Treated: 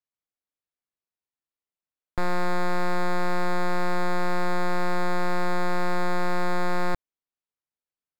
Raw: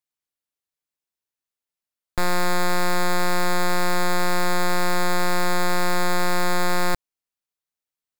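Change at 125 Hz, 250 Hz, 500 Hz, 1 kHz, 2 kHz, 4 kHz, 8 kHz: -2.5, -2.5, -3.0, -4.0, -5.5, -11.0, -15.5 dB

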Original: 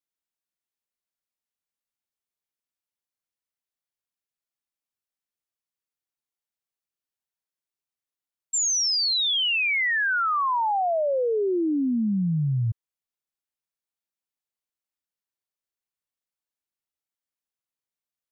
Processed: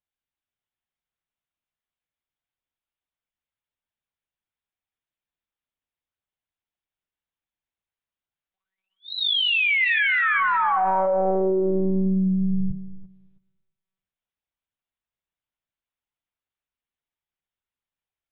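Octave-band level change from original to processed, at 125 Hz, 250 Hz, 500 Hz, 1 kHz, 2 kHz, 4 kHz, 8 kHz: -1.0 dB, +2.0 dB, +2.0 dB, +2.5 dB, +4.0 dB, -1.0 dB, n/a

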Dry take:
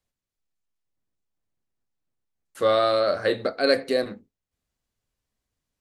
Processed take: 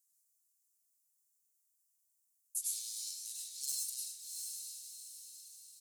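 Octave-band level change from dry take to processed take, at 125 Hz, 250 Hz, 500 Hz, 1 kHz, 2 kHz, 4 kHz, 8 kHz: under -40 dB, under -40 dB, under -40 dB, under -40 dB, under -35 dB, -13.5 dB, n/a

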